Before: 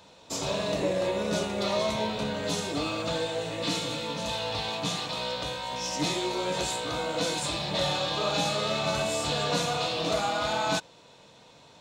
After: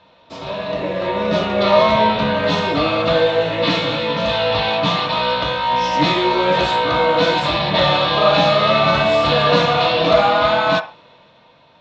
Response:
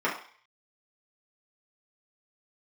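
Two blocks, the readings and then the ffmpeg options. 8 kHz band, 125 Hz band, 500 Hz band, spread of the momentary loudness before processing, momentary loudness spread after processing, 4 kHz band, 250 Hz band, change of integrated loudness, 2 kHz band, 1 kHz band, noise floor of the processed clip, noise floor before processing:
no reading, +11.5 dB, +13.5 dB, 4 LU, 6 LU, +10.0 dB, +11.0 dB, +13.0 dB, +14.0 dB, +15.0 dB, -51 dBFS, -54 dBFS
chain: -filter_complex "[0:a]dynaudnorm=f=110:g=21:m=3.55,lowpass=f=3900:w=0.5412,lowpass=f=3900:w=1.3066,asplit=2[s0][s1];[s1]lowshelf=f=400:t=q:w=1.5:g=-11[s2];[1:a]atrim=start_sample=2205,atrim=end_sample=6615[s3];[s2][s3]afir=irnorm=-1:irlink=0,volume=0.168[s4];[s0][s4]amix=inputs=2:normalize=0,volume=1.12"

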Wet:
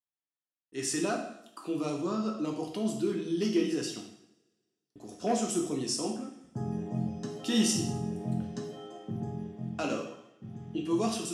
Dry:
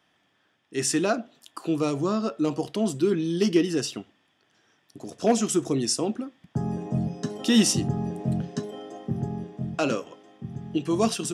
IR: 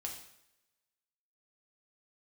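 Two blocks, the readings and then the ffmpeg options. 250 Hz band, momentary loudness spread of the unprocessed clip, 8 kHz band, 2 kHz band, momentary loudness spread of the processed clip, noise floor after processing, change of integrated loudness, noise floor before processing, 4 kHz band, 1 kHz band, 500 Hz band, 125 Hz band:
-6.0 dB, 14 LU, -5.5 dB, -6.5 dB, 15 LU, under -85 dBFS, -6.0 dB, -68 dBFS, -6.0 dB, -5.0 dB, -7.0 dB, -7.0 dB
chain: -filter_complex "[0:a]agate=range=0.0224:threshold=0.00501:ratio=3:detection=peak[s0];[1:a]atrim=start_sample=2205[s1];[s0][s1]afir=irnorm=-1:irlink=0,volume=0.562"

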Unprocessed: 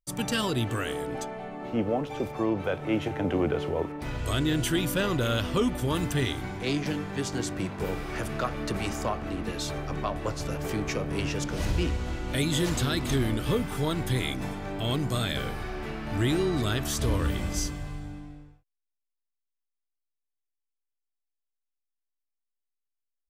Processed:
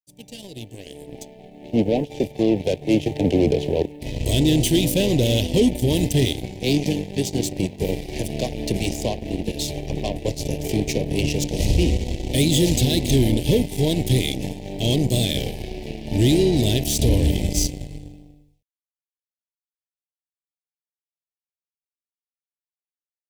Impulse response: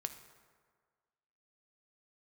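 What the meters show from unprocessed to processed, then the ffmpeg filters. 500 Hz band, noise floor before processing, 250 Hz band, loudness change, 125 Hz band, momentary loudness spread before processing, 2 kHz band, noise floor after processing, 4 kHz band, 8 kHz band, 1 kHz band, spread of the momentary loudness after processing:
+7.5 dB, -83 dBFS, +8.0 dB, +8.0 dB, +8.0 dB, 7 LU, 0.0 dB, under -85 dBFS, +7.5 dB, +8.5 dB, -2.5 dB, 13 LU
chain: -af "dynaudnorm=f=260:g=9:m=3.55,acrusher=bits=9:mix=0:aa=0.000001,aeval=exprs='0.501*(cos(1*acos(clip(val(0)/0.501,-1,1)))-cos(1*PI/2))+0.0631*(cos(7*acos(clip(val(0)/0.501,-1,1)))-cos(7*PI/2))':c=same,asoftclip=type=tanh:threshold=0.355,asuperstop=centerf=1300:order=4:qfactor=0.65"

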